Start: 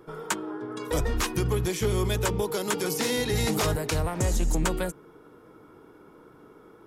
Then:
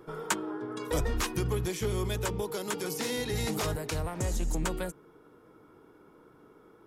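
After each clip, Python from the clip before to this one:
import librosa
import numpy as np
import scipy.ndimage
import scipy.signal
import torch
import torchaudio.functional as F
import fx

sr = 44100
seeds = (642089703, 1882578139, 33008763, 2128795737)

y = fx.rider(x, sr, range_db=10, speed_s=2.0)
y = y * librosa.db_to_amplitude(-5.0)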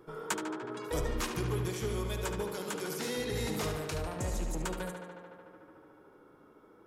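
y = fx.echo_tape(x, sr, ms=73, feedback_pct=89, wet_db=-5.0, lp_hz=5000.0, drive_db=21.0, wow_cents=8)
y = y * librosa.db_to_amplitude(-4.5)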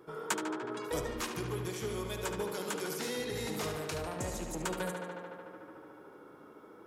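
y = fx.rider(x, sr, range_db=10, speed_s=0.5)
y = fx.highpass(y, sr, hz=150.0, slope=6)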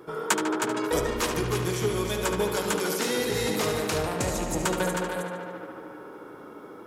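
y = fx.hum_notches(x, sr, base_hz=50, count=3)
y = y + 10.0 ** (-6.5 / 20.0) * np.pad(y, (int(315 * sr / 1000.0), 0))[:len(y)]
y = y * librosa.db_to_amplitude(9.0)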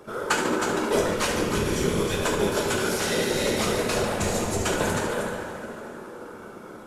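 y = fx.cvsd(x, sr, bps=64000)
y = fx.whisperise(y, sr, seeds[0])
y = fx.rev_double_slope(y, sr, seeds[1], early_s=0.49, late_s=3.3, knee_db=-17, drr_db=0.5)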